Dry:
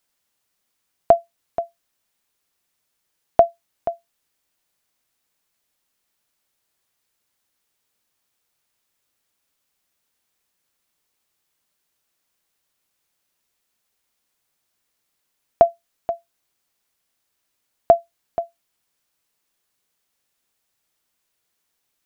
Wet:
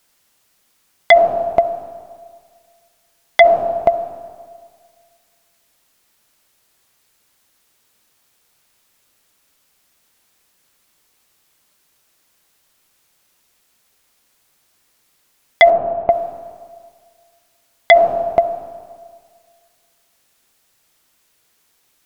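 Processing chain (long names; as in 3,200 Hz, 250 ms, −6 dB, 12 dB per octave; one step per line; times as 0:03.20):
convolution reverb RT60 1.8 s, pre-delay 25 ms, DRR 10.5 dB
sine wavefolder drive 10 dB, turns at −1 dBFS
0:15.70–0:16.10: high-frequency loss of the air 400 metres
level −1 dB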